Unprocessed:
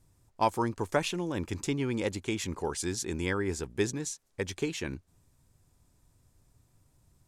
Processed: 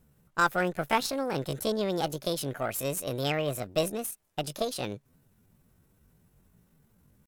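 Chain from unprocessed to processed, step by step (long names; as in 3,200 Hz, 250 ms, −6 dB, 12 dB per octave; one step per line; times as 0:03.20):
pitch shifter +7.5 semitones
harmonic generator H 8 −27 dB, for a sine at −13 dBFS
level +1.5 dB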